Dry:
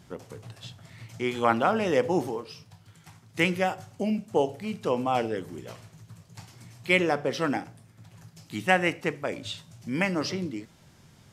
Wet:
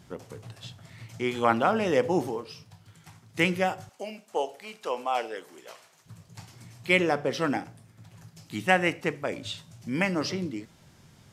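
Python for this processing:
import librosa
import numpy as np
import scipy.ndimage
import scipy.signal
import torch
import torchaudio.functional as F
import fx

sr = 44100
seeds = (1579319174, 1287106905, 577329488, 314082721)

y = fx.highpass(x, sr, hz=590.0, slope=12, at=(3.89, 6.06))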